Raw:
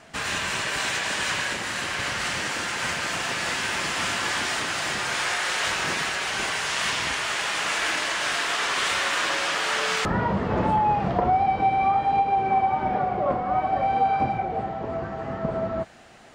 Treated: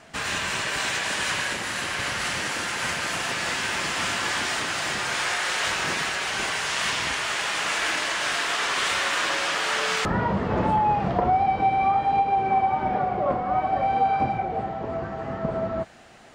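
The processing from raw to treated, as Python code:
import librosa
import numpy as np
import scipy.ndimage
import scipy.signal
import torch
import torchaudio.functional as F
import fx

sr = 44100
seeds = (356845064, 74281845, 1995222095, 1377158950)

y = fx.peak_eq(x, sr, hz=11000.0, db=8.0, octaves=0.21, at=(1.0, 3.32))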